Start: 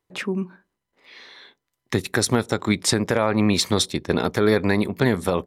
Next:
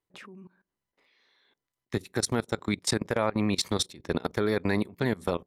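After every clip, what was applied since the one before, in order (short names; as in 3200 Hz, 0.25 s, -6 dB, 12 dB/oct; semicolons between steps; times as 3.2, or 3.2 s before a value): level quantiser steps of 21 dB; gain -4.5 dB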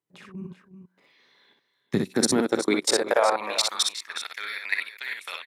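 high-pass sweep 150 Hz -> 2200 Hz, 1.84–4.23; level quantiser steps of 14 dB; tapped delay 48/61/363/390 ms -10.5/-4.5/-15.5/-12.5 dB; gain +7 dB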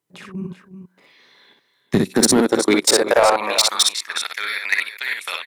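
bell 11000 Hz +3 dB 1.2 oct; in parallel at -6.5 dB: wavefolder -18.5 dBFS; on the sum: gain +5 dB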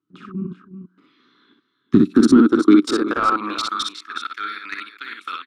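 EQ curve 160 Hz 0 dB, 300 Hz +12 dB, 580 Hz -19 dB, 900 Hz -13 dB, 1300 Hz +9 dB, 1900 Hz -13 dB, 3200 Hz -5 dB, 14000 Hz -25 dB; gain -1.5 dB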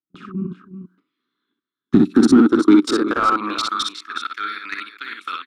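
gate with hold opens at -41 dBFS; in parallel at -9 dB: hard clip -16 dBFS, distortion -6 dB; on the sum: gain -1 dB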